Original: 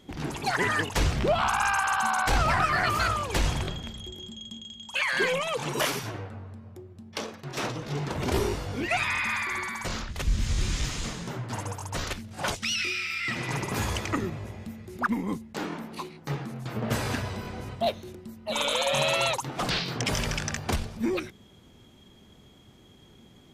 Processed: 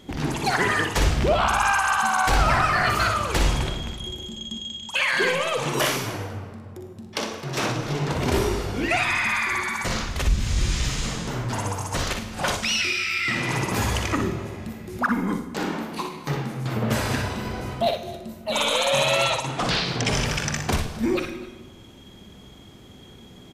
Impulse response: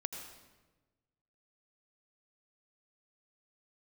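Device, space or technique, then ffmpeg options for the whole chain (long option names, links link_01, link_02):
ducked reverb: -filter_complex "[0:a]asplit=3[link_01][link_02][link_03];[1:a]atrim=start_sample=2205[link_04];[link_02][link_04]afir=irnorm=-1:irlink=0[link_05];[link_03]apad=whole_len=1037895[link_06];[link_05][link_06]sidechaincompress=threshold=-29dB:ratio=8:attack=16:release=1400,volume=2.5dB[link_07];[link_01][link_07]amix=inputs=2:normalize=0,asettb=1/sr,asplit=3[link_08][link_09][link_10];[link_08]atrim=end=19.254[link_11];[link_09]atrim=start=19.25:end=20.26,asetpts=PTS-STARTPTS,afade=type=in:duration=0.004:curve=qsin,afade=type=out:start_time=1.006:duration=0.004:curve=qsin,lowpass=8700[link_12];[link_10]atrim=start=20.256[link_13];[link_11][link_12]acrossfade=duration=0.004:curve1=hsin:curve2=qsin[link_14];[link_14][link_13]acrossfade=duration=0.004:curve1=qsin:curve2=hsin,asplit=2[link_15][link_16];[link_16]adelay=45,volume=-12dB[link_17];[link_15][link_17]amix=inputs=2:normalize=0,aecho=1:1:60|261:0.473|0.112"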